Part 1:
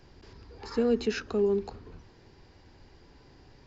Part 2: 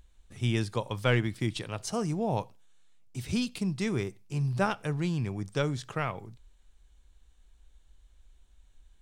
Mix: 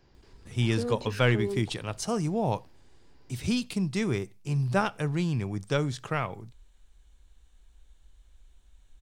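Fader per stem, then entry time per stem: -6.5, +2.0 dB; 0.00, 0.15 s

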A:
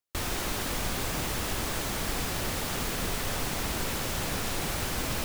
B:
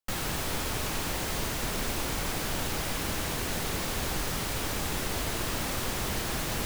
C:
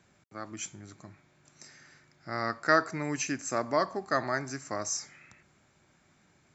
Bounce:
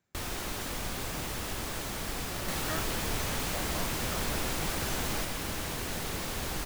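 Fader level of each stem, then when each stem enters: -4.5, -3.5, -15.5 dB; 0.00, 2.40, 0.00 s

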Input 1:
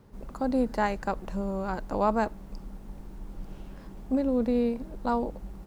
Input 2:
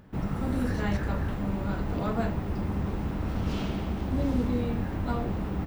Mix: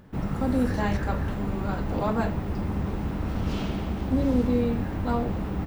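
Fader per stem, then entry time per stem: -5.0, +1.5 dB; 0.00, 0.00 s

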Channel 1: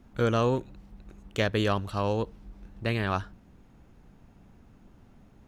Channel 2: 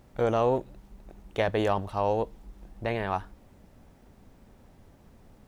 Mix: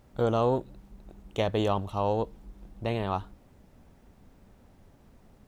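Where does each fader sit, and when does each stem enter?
-9.5, -2.5 dB; 0.00, 0.00 s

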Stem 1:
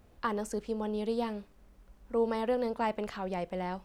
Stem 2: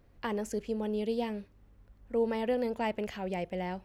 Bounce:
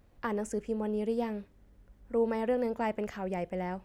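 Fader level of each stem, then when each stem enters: -7.0, -3.0 dB; 0.00, 0.00 s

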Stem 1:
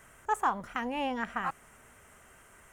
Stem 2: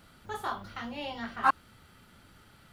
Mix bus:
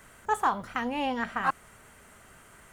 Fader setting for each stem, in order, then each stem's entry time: +2.5, -4.5 dB; 0.00, 0.00 s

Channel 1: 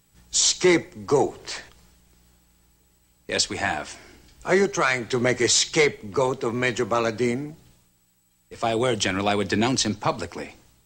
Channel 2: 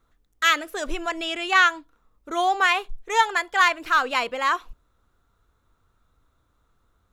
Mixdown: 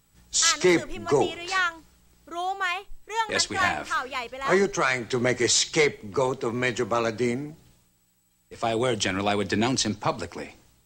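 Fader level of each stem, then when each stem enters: -2.0, -7.5 dB; 0.00, 0.00 s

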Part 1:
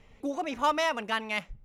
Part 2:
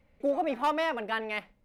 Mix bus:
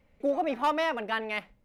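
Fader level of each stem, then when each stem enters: -19.0, 0.0 dB; 0.00, 0.00 s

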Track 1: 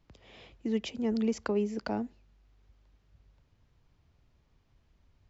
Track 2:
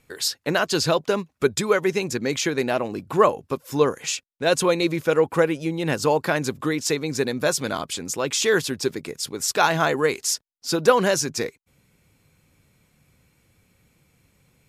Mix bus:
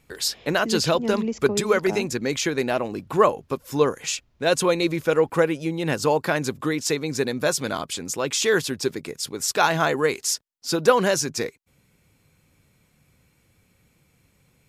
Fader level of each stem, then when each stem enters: +2.5, -0.5 dB; 0.00, 0.00 s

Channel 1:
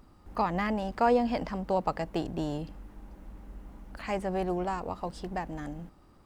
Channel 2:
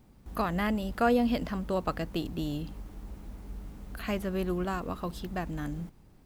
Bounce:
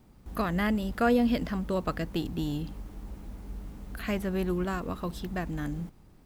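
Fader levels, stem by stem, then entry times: -12.5, +1.0 dB; 0.00, 0.00 s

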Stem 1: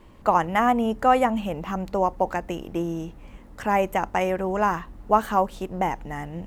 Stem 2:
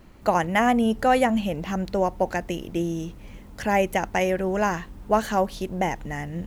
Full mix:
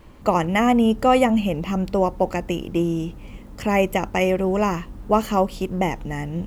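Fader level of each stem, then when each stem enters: +1.5, -1.0 dB; 0.00, 0.00 s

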